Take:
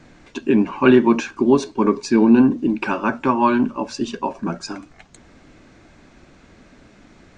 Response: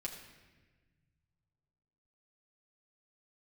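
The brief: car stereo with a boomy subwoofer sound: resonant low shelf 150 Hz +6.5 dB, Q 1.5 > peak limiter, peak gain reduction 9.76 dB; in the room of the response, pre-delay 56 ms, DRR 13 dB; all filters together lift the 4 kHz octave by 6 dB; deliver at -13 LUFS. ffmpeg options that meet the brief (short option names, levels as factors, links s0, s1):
-filter_complex "[0:a]equalizer=f=4000:t=o:g=8,asplit=2[s0][s1];[1:a]atrim=start_sample=2205,adelay=56[s2];[s1][s2]afir=irnorm=-1:irlink=0,volume=0.237[s3];[s0][s3]amix=inputs=2:normalize=0,lowshelf=f=150:t=q:w=1.5:g=6.5,volume=2.99,alimiter=limit=0.841:level=0:latency=1"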